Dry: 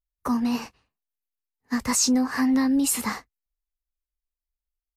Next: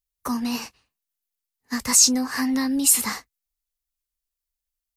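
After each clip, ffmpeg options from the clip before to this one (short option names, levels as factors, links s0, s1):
-af "highshelf=f=2600:g=11.5,volume=0.75"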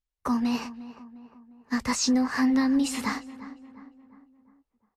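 -filter_complex "[0:a]acrossover=split=6300[s0][s1];[s1]acompressor=threshold=0.0447:ratio=4:attack=1:release=60[s2];[s0][s2]amix=inputs=2:normalize=0,aemphasis=mode=reproduction:type=75fm,asplit=2[s3][s4];[s4]adelay=353,lowpass=f=1800:p=1,volume=0.178,asplit=2[s5][s6];[s6]adelay=353,lowpass=f=1800:p=1,volume=0.52,asplit=2[s7][s8];[s8]adelay=353,lowpass=f=1800:p=1,volume=0.52,asplit=2[s9][s10];[s10]adelay=353,lowpass=f=1800:p=1,volume=0.52,asplit=2[s11][s12];[s12]adelay=353,lowpass=f=1800:p=1,volume=0.52[s13];[s3][s5][s7][s9][s11][s13]amix=inputs=6:normalize=0"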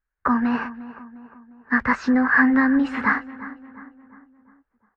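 -af "lowpass=f=1600:t=q:w=5.8,volume=1.58"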